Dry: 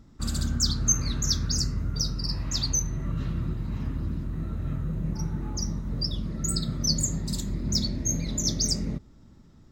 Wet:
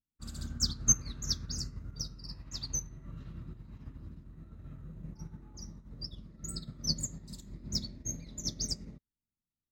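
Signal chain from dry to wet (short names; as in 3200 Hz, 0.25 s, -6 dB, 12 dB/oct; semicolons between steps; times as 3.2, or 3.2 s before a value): upward expander 2.5:1, over -47 dBFS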